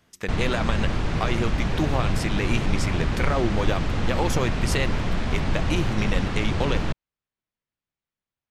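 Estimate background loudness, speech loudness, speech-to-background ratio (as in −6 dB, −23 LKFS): −27.0 LKFS, −29.0 LKFS, −2.0 dB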